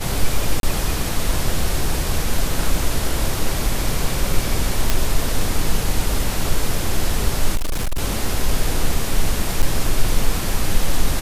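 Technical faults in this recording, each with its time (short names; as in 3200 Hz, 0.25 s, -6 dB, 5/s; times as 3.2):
0.6–0.63 gap 32 ms
4.9 pop
7.55–8.01 clipped -17 dBFS
9.62–9.63 gap 6.6 ms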